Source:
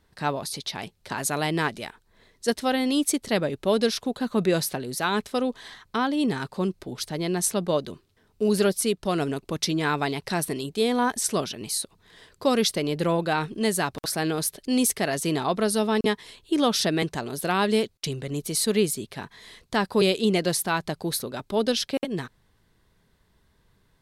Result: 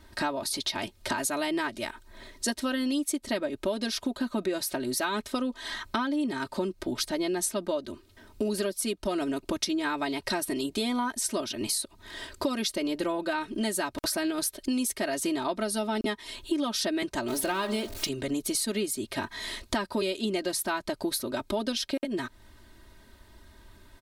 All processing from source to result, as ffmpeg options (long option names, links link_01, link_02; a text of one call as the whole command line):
ffmpeg -i in.wav -filter_complex "[0:a]asettb=1/sr,asplit=3[link_01][link_02][link_03];[link_01]atrim=end=17.284[link_04];[link_02]atrim=start=17.28:end=18.09,asetpts=PTS-STARTPTS,afade=type=in:duration=0.004:curve=qsin,afade=type=out:start_time=0.806:duration=0.004:curve=qsin,aeval=exprs='val(0)+0.5*0.0168*sgn(val(0))':channel_layout=same,bandreject=frequency=67.67:width_type=h:width=4,bandreject=frequency=135.34:width_type=h:width=4,bandreject=frequency=203.01:width_type=h:width=4,bandreject=frequency=270.68:width_type=h:width=4,bandreject=frequency=338.35:width_type=h:width=4,bandreject=frequency=406.02:width_type=h:width=4,bandreject=frequency=473.69:width_type=h:width=4,bandreject=frequency=541.36:width_type=h:width=4,bandreject=frequency=609.03:width_type=h:width=4,bandreject=frequency=676.7:width_type=h:width=4,bandreject=frequency=744.37:width_type=h:width=4,bandreject=frequency=812.04:width_type=h:width=4,bandreject=frequency=879.71:width_type=h:width=4,bandreject=frequency=947.38:width_type=h:width=4,bandreject=frequency=1015.05:width_type=h:width=4,bandreject=frequency=1082.72:width_type=h:width=4,bandreject=frequency=1150.39:width_type=h:width=4,bandreject=frequency=1218.06:width_type=h:width=4,bandreject=frequency=1285.73:width_type=h:width=4,bandreject=frequency=1353.4:width_type=h:width=4,bandreject=frequency=1421.07:width_type=h:width=4,bandreject=frequency=1488.74:width_type=h:width=4,bandreject=frequency=1556.41:width_type=h:width=4,bandreject=frequency=1624.08:width_type=h:width=4,bandreject=frequency=1691.75:width_type=h:width=4,bandreject=frequency=1759.42:width_type=h:width=4,bandreject=frequency=1827.09:width_type=h:width=4[link_05];[link_03]atrim=start=18.086[link_06];[link_04][link_05]acrossfade=duration=0.004:curve1=hsin:curve2=qsin[link_07];[link_07][link_06]acrossfade=duration=0.004:curve1=qsin:curve2=hsin,aecho=1:1:3.2:0.94,acompressor=threshold=-36dB:ratio=6,volume=8dB" out.wav